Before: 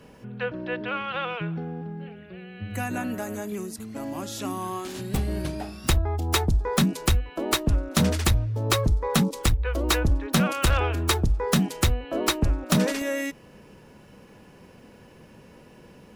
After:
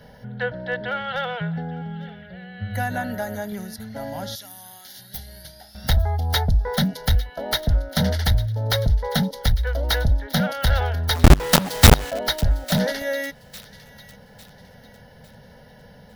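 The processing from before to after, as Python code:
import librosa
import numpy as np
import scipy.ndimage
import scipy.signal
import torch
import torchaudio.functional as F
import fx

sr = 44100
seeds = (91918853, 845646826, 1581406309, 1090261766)

p1 = fx.pre_emphasis(x, sr, coefficient=0.9, at=(4.35, 5.75))
p2 = fx.rider(p1, sr, range_db=3, speed_s=2.0)
p3 = p1 + (p2 * 10.0 ** (1.0 / 20.0))
p4 = np.clip(10.0 ** (10.0 / 20.0) * p3, -1.0, 1.0) / 10.0 ** (10.0 / 20.0)
p5 = fx.fixed_phaser(p4, sr, hz=1700.0, stages=8)
p6 = fx.quant_companded(p5, sr, bits=2, at=(11.14, 12.09), fade=0.02)
p7 = p6 + fx.echo_wet_highpass(p6, sr, ms=852, feedback_pct=37, hz=2000.0, wet_db=-16.5, dry=0)
y = p7 * 10.0 ** (-1.5 / 20.0)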